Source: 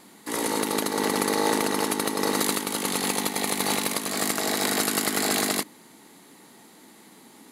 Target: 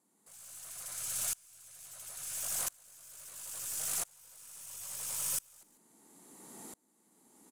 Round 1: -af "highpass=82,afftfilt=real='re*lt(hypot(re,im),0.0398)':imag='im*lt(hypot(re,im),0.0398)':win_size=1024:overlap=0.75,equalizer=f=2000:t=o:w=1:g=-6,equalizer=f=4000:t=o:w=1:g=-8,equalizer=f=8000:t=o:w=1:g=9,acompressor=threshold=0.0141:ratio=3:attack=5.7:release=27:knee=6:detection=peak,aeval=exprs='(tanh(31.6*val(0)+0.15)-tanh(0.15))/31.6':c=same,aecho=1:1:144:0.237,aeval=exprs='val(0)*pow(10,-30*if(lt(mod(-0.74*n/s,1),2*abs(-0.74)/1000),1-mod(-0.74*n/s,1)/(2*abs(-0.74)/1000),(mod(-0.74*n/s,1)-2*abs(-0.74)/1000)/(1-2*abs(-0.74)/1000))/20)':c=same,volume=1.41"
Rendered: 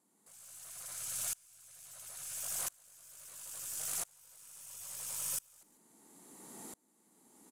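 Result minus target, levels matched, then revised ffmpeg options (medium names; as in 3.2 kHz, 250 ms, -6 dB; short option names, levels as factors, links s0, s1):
compression: peak gain reduction +7 dB
-af "highpass=82,afftfilt=real='re*lt(hypot(re,im),0.0398)':imag='im*lt(hypot(re,im),0.0398)':win_size=1024:overlap=0.75,equalizer=f=2000:t=o:w=1:g=-6,equalizer=f=4000:t=o:w=1:g=-8,equalizer=f=8000:t=o:w=1:g=9,aeval=exprs='(tanh(31.6*val(0)+0.15)-tanh(0.15))/31.6':c=same,aecho=1:1:144:0.237,aeval=exprs='val(0)*pow(10,-30*if(lt(mod(-0.74*n/s,1),2*abs(-0.74)/1000),1-mod(-0.74*n/s,1)/(2*abs(-0.74)/1000),(mod(-0.74*n/s,1)-2*abs(-0.74)/1000)/(1-2*abs(-0.74)/1000))/20)':c=same,volume=1.41"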